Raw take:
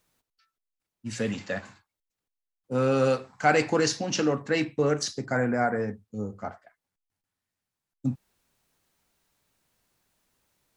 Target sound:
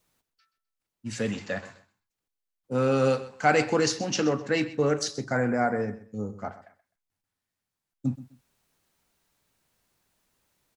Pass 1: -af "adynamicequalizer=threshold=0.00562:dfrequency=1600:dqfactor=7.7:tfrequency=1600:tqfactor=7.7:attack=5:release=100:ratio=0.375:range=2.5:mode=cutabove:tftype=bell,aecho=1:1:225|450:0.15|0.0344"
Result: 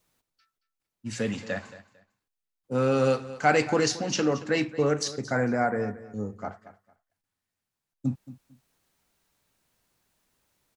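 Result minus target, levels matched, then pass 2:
echo 97 ms late
-af "adynamicequalizer=threshold=0.00562:dfrequency=1600:dqfactor=7.7:tfrequency=1600:tqfactor=7.7:attack=5:release=100:ratio=0.375:range=2.5:mode=cutabove:tftype=bell,aecho=1:1:128|256:0.15|0.0344"

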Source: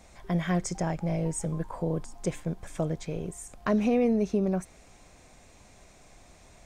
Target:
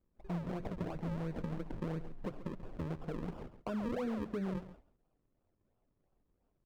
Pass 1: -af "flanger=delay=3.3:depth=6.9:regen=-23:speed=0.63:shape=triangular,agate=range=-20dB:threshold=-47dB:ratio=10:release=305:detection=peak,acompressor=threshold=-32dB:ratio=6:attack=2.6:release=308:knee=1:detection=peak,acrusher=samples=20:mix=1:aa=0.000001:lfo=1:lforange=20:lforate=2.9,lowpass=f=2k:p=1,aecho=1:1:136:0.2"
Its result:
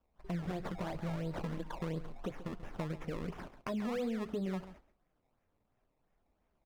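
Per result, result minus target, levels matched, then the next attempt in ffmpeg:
decimation with a swept rate: distortion -6 dB; 2000 Hz band +3.0 dB
-af "flanger=delay=3.3:depth=6.9:regen=-23:speed=0.63:shape=triangular,agate=range=-20dB:threshold=-47dB:ratio=10:release=305:detection=peak,acompressor=threshold=-32dB:ratio=6:attack=2.6:release=308:knee=1:detection=peak,acrusher=samples=42:mix=1:aa=0.000001:lfo=1:lforange=42:lforate=2.9,lowpass=f=2k:p=1,aecho=1:1:136:0.2"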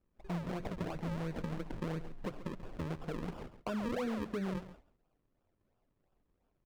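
2000 Hz band +4.0 dB
-af "flanger=delay=3.3:depth=6.9:regen=-23:speed=0.63:shape=triangular,agate=range=-20dB:threshold=-47dB:ratio=10:release=305:detection=peak,acompressor=threshold=-32dB:ratio=6:attack=2.6:release=308:knee=1:detection=peak,acrusher=samples=42:mix=1:aa=0.000001:lfo=1:lforange=42:lforate=2.9,lowpass=f=880:p=1,aecho=1:1:136:0.2"

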